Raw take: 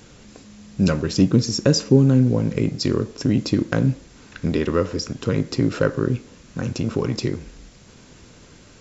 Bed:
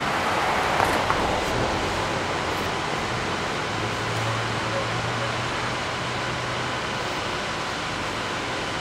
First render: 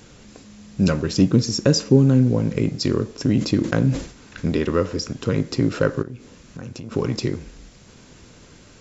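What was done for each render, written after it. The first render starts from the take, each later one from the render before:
0:03.23–0:04.51: level that may fall only so fast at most 120 dB per second
0:06.02–0:06.92: downward compressor 4 to 1, threshold −32 dBFS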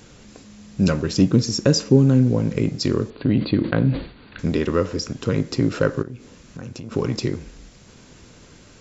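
0:03.10–0:04.39: linear-phase brick-wall low-pass 4,700 Hz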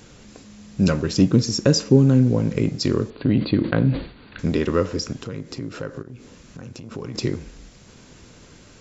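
0:05.22–0:07.15: downward compressor 2 to 1, threshold −35 dBFS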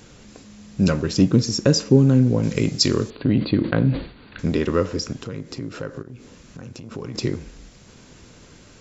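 0:02.43–0:03.17: high-shelf EQ 2,800 Hz +11.5 dB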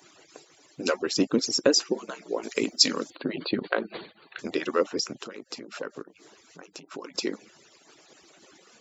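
harmonic-percussive split with one part muted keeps percussive
high-pass filter 340 Hz 12 dB per octave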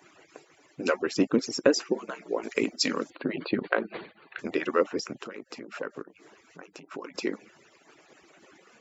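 high shelf with overshoot 3,000 Hz −6.5 dB, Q 1.5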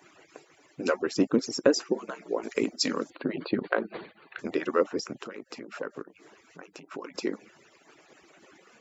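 dynamic equaliser 2,500 Hz, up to −5 dB, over −46 dBFS, Q 1.3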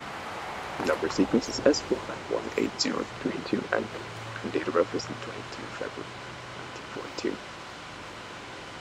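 mix in bed −13.5 dB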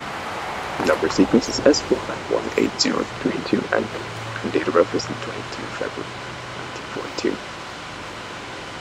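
level +8 dB
brickwall limiter −2 dBFS, peak gain reduction 2.5 dB

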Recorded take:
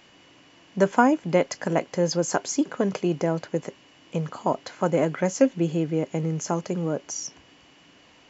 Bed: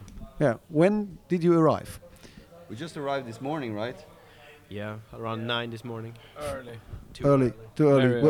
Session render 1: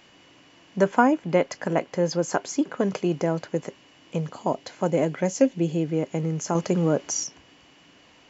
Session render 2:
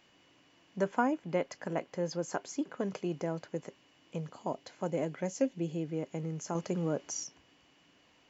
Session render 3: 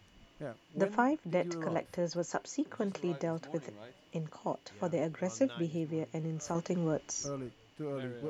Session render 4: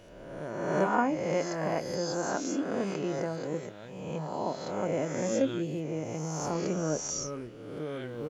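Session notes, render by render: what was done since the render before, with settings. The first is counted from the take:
0:00.81–0:02.80: bass and treble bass −1 dB, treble −5 dB; 0:04.20–0:05.87: parametric band 1,300 Hz −6 dB 0.82 octaves; 0:06.55–0:07.24: clip gain +5 dB
level −10.5 dB
mix in bed −19 dB
peak hold with a rise ahead of every peak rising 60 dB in 1.34 s; double-tracking delay 26 ms −13 dB

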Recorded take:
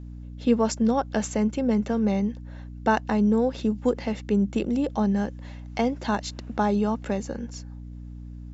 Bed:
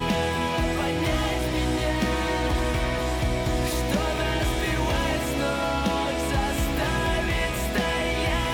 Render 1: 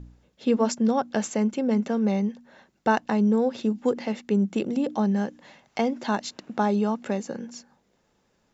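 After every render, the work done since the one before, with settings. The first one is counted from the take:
hum removal 60 Hz, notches 5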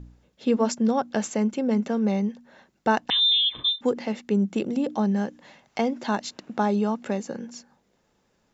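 0:03.10–0:03.81: voice inversion scrambler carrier 3,800 Hz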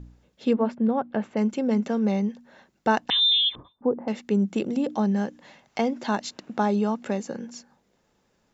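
0:00.53–0:01.37: high-frequency loss of the air 490 metres
0:03.55–0:04.08: low-pass filter 1,100 Hz 24 dB per octave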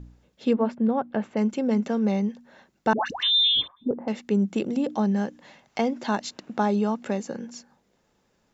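0:02.93–0:03.91: all-pass dispersion highs, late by 130 ms, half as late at 890 Hz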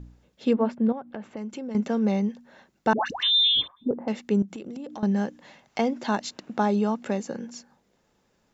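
0:00.92–0:01.75: downward compressor 4 to 1, threshold −33 dBFS
0:04.42–0:05.03: downward compressor 12 to 1, threshold −33 dBFS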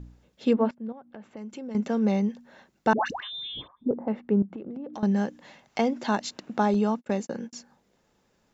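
0:00.71–0:02.08: fade in, from −17 dB
0:03.20–0:04.94: low-pass filter 1,400 Hz
0:06.74–0:07.53: noise gate −39 dBFS, range −44 dB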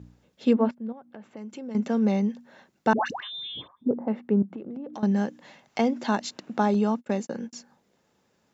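high-pass filter 86 Hz
dynamic equaliser 240 Hz, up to +3 dB, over −37 dBFS, Q 5.4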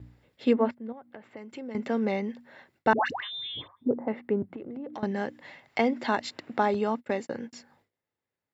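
noise gate with hold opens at −54 dBFS
thirty-one-band graphic EQ 100 Hz +8 dB, 200 Hz −10 dB, 2,000 Hz +8 dB, 6,300 Hz −12 dB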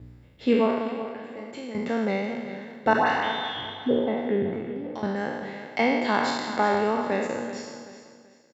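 peak hold with a decay on every bin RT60 1.35 s
repeating echo 382 ms, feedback 33%, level −12 dB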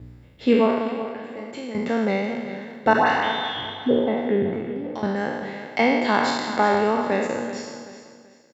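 level +3.5 dB
brickwall limiter −3 dBFS, peak gain reduction 1 dB

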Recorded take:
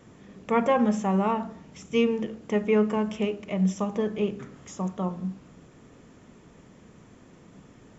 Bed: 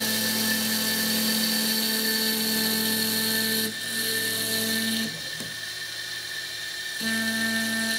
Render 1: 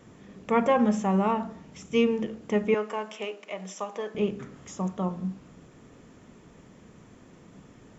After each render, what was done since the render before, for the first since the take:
0:02.74–0:04.15: high-pass filter 560 Hz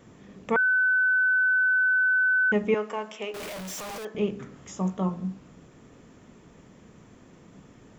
0:00.56–0:02.52: beep over 1,510 Hz −19 dBFS
0:03.34–0:04.05: sign of each sample alone
0:04.67–0:05.14: double-tracking delay 16 ms −7.5 dB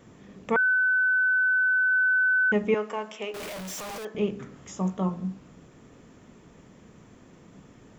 0:00.74–0:01.92: high-frequency loss of the air 76 metres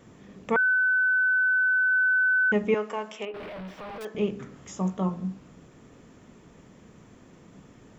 0:03.25–0:04.01: high-frequency loss of the air 390 metres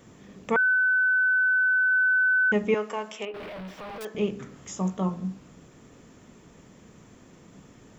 high-shelf EQ 4,700 Hz +6.5 dB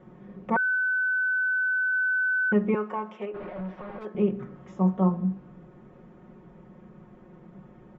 low-pass filter 1,300 Hz 12 dB per octave
comb filter 5.5 ms, depth 80%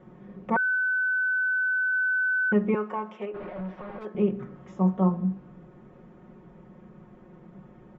no processing that can be heard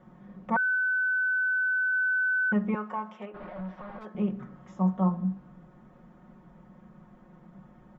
graphic EQ with 15 bands 100 Hz −10 dB, 400 Hz −11 dB, 2,500 Hz −5 dB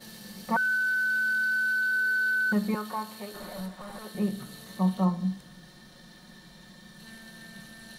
mix in bed −22 dB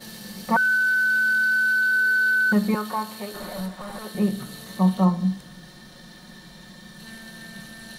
level +6 dB

